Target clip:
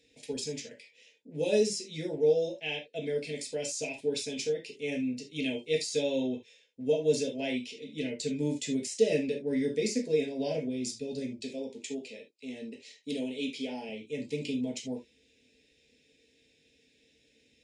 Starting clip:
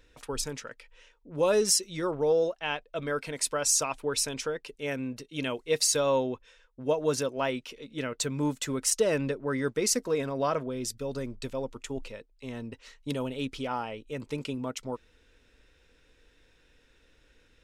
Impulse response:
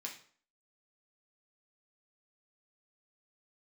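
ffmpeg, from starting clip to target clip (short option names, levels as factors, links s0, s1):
-filter_complex "[0:a]asettb=1/sr,asplit=3[s0][s1][s2];[s0]atrim=end=11.394[s3];[s1]atrim=start=11.39:end=13.89,asetpts=PTS-STARTPTS,afade=t=in:d=0.004:c=qsin,afade=t=out:st=2.496:d=0.004:c=qsin,highpass=230[s4];[s2]atrim=start=13.886[s5];[s3][s4]acrossfade=d=0.004:c1=hsin:c2=qsin[s6];[s6][s5]acrossfade=d=0.004:c1=qsin:c2=hsin,deesser=0.65,asuperstop=centerf=1200:order=4:qfactor=0.67[s7];[1:a]atrim=start_sample=2205,atrim=end_sample=3969[s8];[s7][s8]afir=irnorm=-1:irlink=0,volume=1.41" -ar 22050 -c:a libvorbis -b:a 48k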